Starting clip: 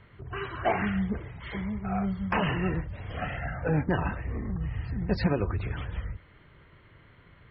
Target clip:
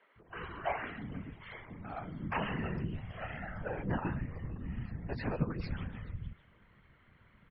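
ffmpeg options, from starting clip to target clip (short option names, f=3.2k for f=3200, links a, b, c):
-filter_complex "[0:a]asettb=1/sr,asplit=3[a][b][c];[a]atrim=end=0.574[d];[b]atrim=start=0.57:end=2.07,asetpts=PTS-STARTPTS,afade=t=in:d=0.004:c=qsin,afade=t=out:st=1.496:d=0.004:c=qsin,equalizer=f=130:w=0.82:g=-9.5[e];[c]atrim=start=2.066[f];[d][e]acrossfade=d=0.004:c1=hsin:c2=qsin[g];[g][f]acrossfade=d=0.004:c1=qsin:c2=hsin,afftfilt=real='hypot(re,im)*cos(2*PI*random(0))':imag='hypot(re,im)*sin(2*PI*random(1))':win_size=512:overlap=0.75,acrossover=split=360|4300[h][i][j];[h]adelay=160[k];[j]adelay=460[l];[k][i][l]amix=inputs=3:normalize=0,volume=-1dB"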